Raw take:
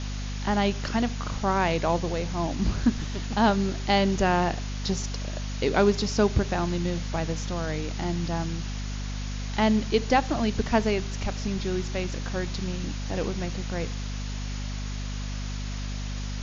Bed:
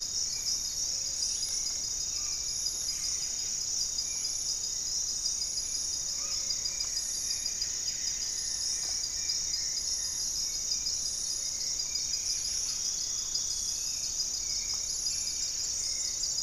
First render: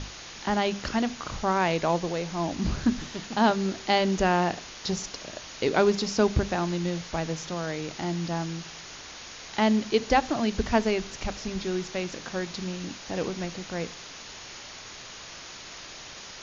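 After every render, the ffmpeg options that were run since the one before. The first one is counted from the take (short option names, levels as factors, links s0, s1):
-af "bandreject=f=50:t=h:w=6,bandreject=f=100:t=h:w=6,bandreject=f=150:t=h:w=6,bandreject=f=200:t=h:w=6,bandreject=f=250:t=h:w=6"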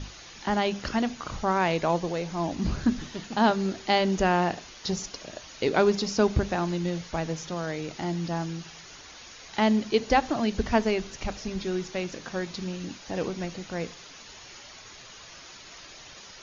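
-af "afftdn=nr=7:nf=-43"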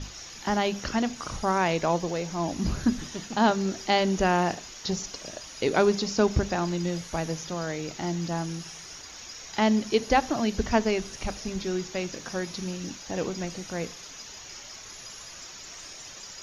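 -filter_complex "[1:a]volume=0.224[s0];[0:a][s0]amix=inputs=2:normalize=0"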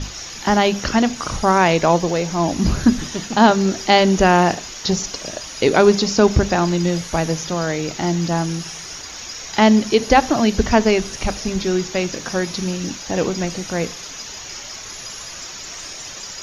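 -af "volume=3.16,alimiter=limit=0.794:level=0:latency=1"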